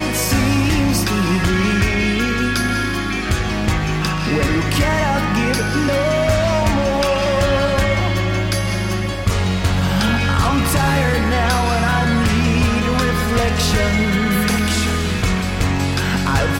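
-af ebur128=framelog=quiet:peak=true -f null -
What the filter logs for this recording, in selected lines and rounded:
Integrated loudness:
  I:         -17.3 LUFS
  Threshold: -27.3 LUFS
Loudness range:
  LRA:         1.7 LU
  Threshold: -37.3 LUFS
  LRA low:   -18.2 LUFS
  LRA high:  -16.5 LUFS
True peak:
  Peak:       -6.9 dBFS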